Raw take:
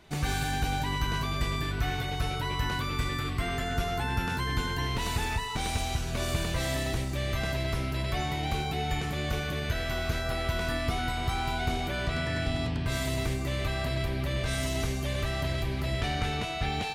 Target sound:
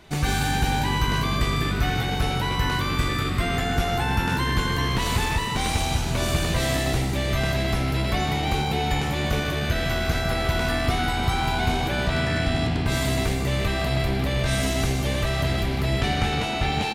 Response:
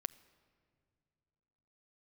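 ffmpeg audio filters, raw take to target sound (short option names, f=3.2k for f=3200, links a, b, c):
-filter_complex "[0:a]aeval=exprs='0.112*(cos(1*acos(clip(val(0)/0.112,-1,1)))-cos(1*PI/2))+0.00282*(cos(4*acos(clip(val(0)/0.112,-1,1)))-cos(4*PI/2))':c=same,asplit=7[a][b][c][d][e][f][g];[b]adelay=153,afreqshift=68,volume=-10dB[h];[c]adelay=306,afreqshift=136,volume=-15dB[i];[d]adelay=459,afreqshift=204,volume=-20.1dB[j];[e]adelay=612,afreqshift=272,volume=-25.1dB[k];[f]adelay=765,afreqshift=340,volume=-30.1dB[l];[g]adelay=918,afreqshift=408,volume=-35.2dB[m];[a][h][i][j][k][l][m]amix=inputs=7:normalize=0,volume=6dB"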